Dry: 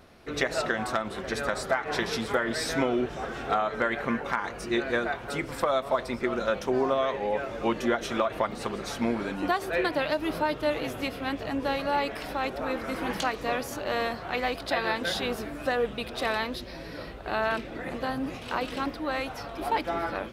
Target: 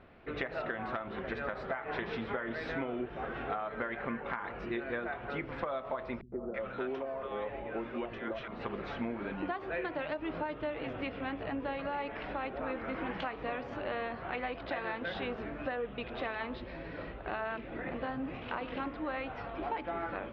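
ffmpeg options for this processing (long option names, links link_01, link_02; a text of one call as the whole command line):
ffmpeg -i in.wav -filter_complex "[0:a]lowpass=frequency=2900:width=0.5412,lowpass=frequency=2900:width=1.3066,bandreject=frequency=72.18:width_type=h:width=4,bandreject=frequency=144.36:width_type=h:width=4,bandreject=frequency=216.54:width_type=h:width=4,bandreject=frequency=288.72:width_type=h:width=4,bandreject=frequency=360.9:width_type=h:width=4,bandreject=frequency=433.08:width_type=h:width=4,bandreject=frequency=505.26:width_type=h:width=4,bandreject=frequency=577.44:width_type=h:width=4,bandreject=frequency=649.62:width_type=h:width=4,bandreject=frequency=721.8:width_type=h:width=4,bandreject=frequency=793.98:width_type=h:width=4,bandreject=frequency=866.16:width_type=h:width=4,bandreject=frequency=938.34:width_type=h:width=4,bandreject=frequency=1010.52:width_type=h:width=4,bandreject=frequency=1082.7:width_type=h:width=4,bandreject=frequency=1154.88:width_type=h:width=4,bandreject=frequency=1227.06:width_type=h:width=4,bandreject=frequency=1299.24:width_type=h:width=4,bandreject=frequency=1371.42:width_type=h:width=4,acompressor=threshold=-31dB:ratio=4,asettb=1/sr,asplit=3[link_01][link_02][link_03];[link_01]atrim=end=6.214[link_04];[link_02]atrim=start=6.21:end=8.48,asetpts=PTS-STARTPTS,afade=type=in:duration=0.004:curve=qsin,afade=type=out:start_time=2.266:duration=0.004:curve=qsin,acrossover=split=170|880[link_05][link_06][link_07];[link_06]adelay=110[link_08];[link_07]adelay=330[link_09];[link_05][link_08][link_09]amix=inputs=3:normalize=0,atrim=end_sample=100107[link_10];[link_03]atrim=start=8.476[link_11];[link_04][link_10]acrossfade=duration=0.004:curve1=hsin:curve2=qsin[link_12];[link_12][link_11]acrossfade=duration=0.004:curve1=qsin:curve2=hsin,volume=-2.5dB" out.wav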